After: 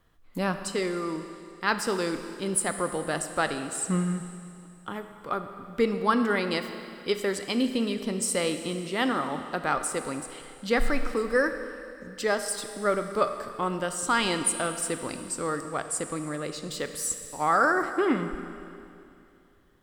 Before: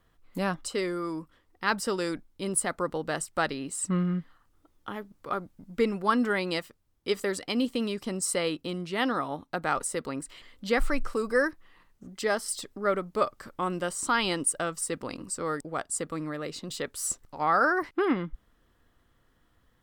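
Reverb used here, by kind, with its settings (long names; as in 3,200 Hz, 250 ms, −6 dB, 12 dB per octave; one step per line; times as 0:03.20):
four-comb reverb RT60 2.6 s, combs from 27 ms, DRR 8 dB
level +1 dB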